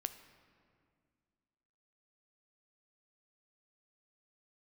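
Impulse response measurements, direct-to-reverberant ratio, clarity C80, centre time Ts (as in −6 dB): 9.5 dB, 13.0 dB, 13 ms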